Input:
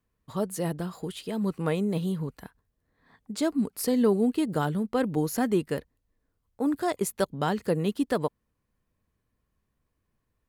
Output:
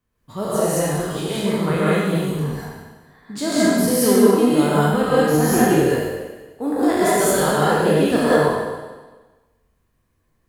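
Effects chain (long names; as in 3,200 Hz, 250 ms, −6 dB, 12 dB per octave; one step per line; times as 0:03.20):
peak hold with a decay on every bin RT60 1.28 s
0:05.38–0:05.78: frequency shifter −16 Hz
reverb whose tail is shaped and stops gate 230 ms rising, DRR −7 dB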